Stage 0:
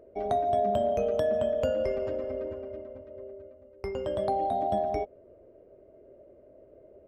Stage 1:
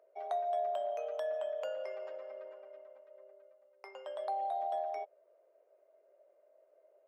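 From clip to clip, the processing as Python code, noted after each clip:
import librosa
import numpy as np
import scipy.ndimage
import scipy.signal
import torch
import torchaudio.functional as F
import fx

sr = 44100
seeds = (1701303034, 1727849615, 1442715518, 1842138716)

y = scipy.signal.sosfilt(scipy.signal.butter(4, 650.0, 'highpass', fs=sr, output='sos'), x)
y = fx.high_shelf(y, sr, hz=3600.0, db=-6.5)
y = y * 10.0 ** (-5.0 / 20.0)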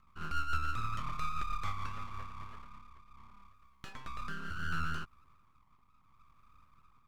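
y = fx.rotary_switch(x, sr, hz=7.0, then_hz=0.7, switch_at_s=1.75)
y = np.abs(y)
y = y * 10.0 ** (6.5 / 20.0)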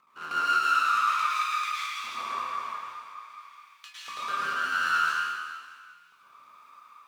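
y = fx.filter_lfo_highpass(x, sr, shape='saw_up', hz=0.49, low_hz=430.0, high_hz=3500.0, q=1.1)
y = fx.rev_plate(y, sr, seeds[0], rt60_s=1.8, hf_ratio=1.0, predelay_ms=95, drr_db=-8.5)
y = y * 10.0 ** (5.0 / 20.0)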